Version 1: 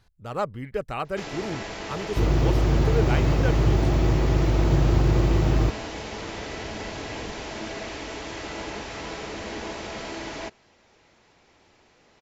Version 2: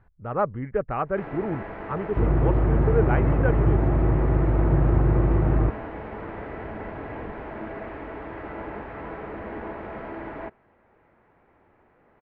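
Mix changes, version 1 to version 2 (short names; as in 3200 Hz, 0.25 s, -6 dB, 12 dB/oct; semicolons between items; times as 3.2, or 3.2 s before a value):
speech +3.5 dB; master: add LPF 1800 Hz 24 dB/oct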